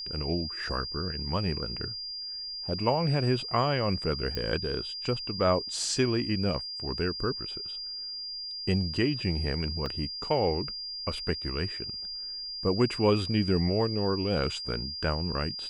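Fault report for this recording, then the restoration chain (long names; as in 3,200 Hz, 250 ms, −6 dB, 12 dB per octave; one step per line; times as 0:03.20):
whistle 4,800 Hz −35 dBFS
0:04.35: click −19 dBFS
0:09.86: drop-out 3.2 ms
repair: click removal
notch filter 4,800 Hz, Q 30
repair the gap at 0:09.86, 3.2 ms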